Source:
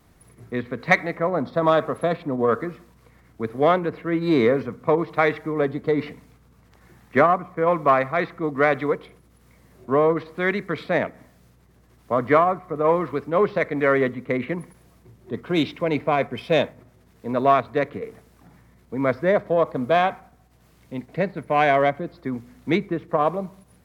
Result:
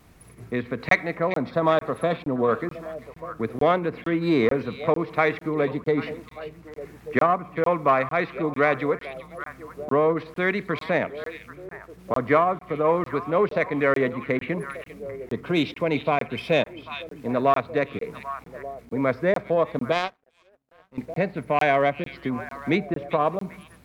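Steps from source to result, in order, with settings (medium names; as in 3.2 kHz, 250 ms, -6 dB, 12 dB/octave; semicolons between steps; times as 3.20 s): peaking EQ 2.5 kHz +4.5 dB 0.32 oct; repeats whose band climbs or falls 395 ms, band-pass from 3.3 kHz, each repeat -1.4 oct, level -11 dB; 19.92–20.98 s: power-law waveshaper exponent 2; in parallel at +1.5 dB: compression, threshold -29 dBFS, peak gain reduction 17 dB; on the sum: crackling interface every 0.45 s, samples 1024, zero, from 0.89 s; trim -4 dB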